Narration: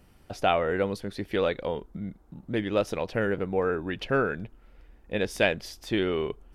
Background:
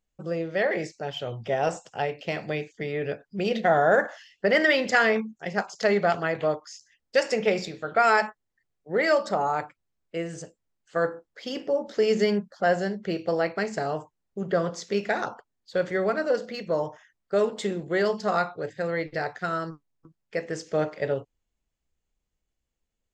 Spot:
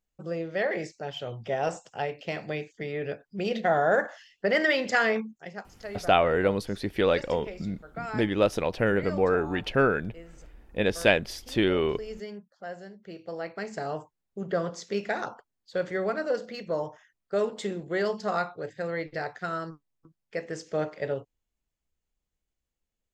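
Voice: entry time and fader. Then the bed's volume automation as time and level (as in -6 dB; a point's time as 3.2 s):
5.65 s, +2.5 dB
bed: 5.32 s -3 dB
5.68 s -16.5 dB
12.91 s -16.5 dB
13.92 s -3.5 dB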